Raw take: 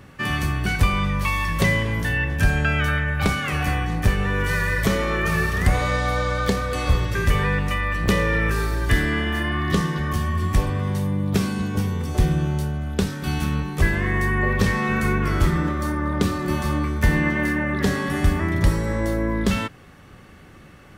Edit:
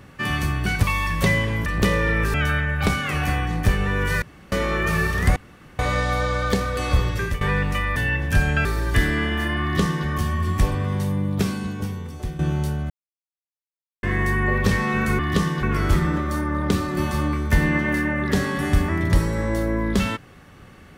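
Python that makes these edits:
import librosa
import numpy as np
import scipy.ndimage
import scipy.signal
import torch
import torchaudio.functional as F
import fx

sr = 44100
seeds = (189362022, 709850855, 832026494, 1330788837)

y = fx.edit(x, sr, fx.cut(start_s=0.83, length_s=0.38),
    fx.swap(start_s=2.04, length_s=0.69, other_s=7.92, other_length_s=0.68),
    fx.room_tone_fill(start_s=4.61, length_s=0.3),
    fx.insert_room_tone(at_s=5.75, length_s=0.43),
    fx.fade_out_to(start_s=7.05, length_s=0.32, curve='qsin', floor_db=-17.5),
    fx.duplicate(start_s=9.57, length_s=0.44, to_s=15.14),
    fx.fade_out_to(start_s=11.16, length_s=1.18, floor_db=-13.5),
    fx.silence(start_s=12.85, length_s=1.13), tone=tone)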